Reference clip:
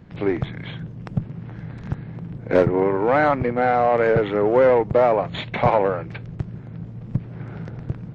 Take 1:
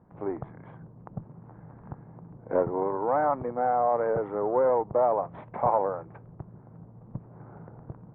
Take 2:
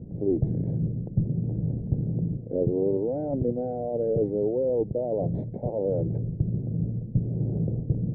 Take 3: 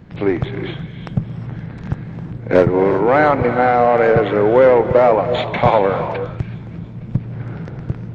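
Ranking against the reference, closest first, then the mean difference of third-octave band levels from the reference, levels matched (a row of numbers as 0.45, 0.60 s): 3, 1, 2; 1.5, 4.5, 9.0 dB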